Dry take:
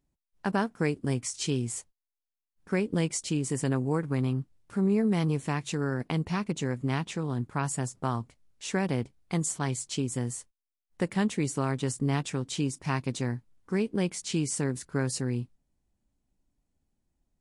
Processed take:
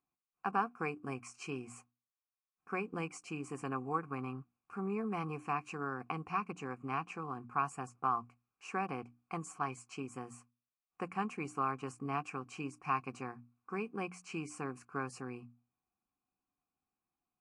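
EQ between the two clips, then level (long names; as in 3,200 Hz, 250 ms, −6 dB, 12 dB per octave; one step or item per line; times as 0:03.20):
formant filter a
mains-hum notches 60/120/180/240/300 Hz
phaser with its sweep stopped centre 1,500 Hz, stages 4
+13.5 dB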